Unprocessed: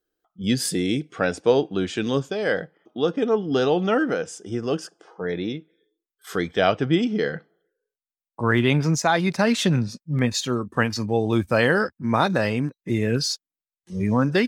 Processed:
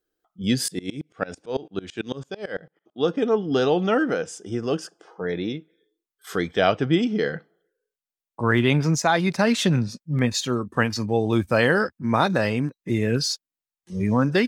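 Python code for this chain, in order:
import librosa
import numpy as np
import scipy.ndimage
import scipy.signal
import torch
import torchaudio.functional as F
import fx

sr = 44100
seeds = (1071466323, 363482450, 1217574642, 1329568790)

y = fx.tremolo_decay(x, sr, direction='swelling', hz=9.0, depth_db=26, at=(0.68, 3.01))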